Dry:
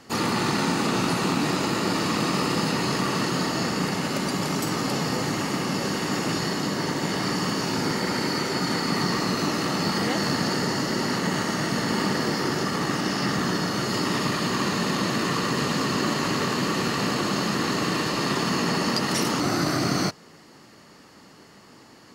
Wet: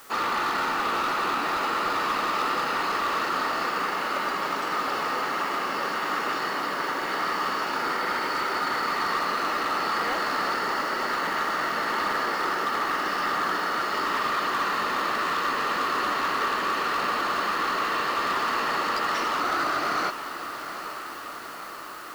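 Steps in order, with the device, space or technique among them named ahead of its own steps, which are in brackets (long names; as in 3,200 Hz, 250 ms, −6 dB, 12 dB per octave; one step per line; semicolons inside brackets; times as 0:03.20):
drive-through speaker (band-pass filter 520–3,200 Hz; parametric band 1,300 Hz +8 dB 0.59 octaves; hard clipping −22 dBFS, distortion −15 dB; white noise bed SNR 23 dB)
feedback delay with all-pass diffusion 837 ms, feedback 69%, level −11 dB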